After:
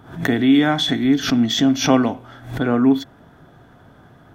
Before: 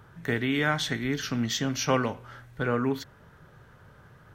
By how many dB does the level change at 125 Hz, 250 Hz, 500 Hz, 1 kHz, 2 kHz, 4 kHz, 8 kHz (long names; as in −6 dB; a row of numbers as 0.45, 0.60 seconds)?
+5.5, +14.5, +7.0, +7.0, +4.0, +10.5, +5.5 decibels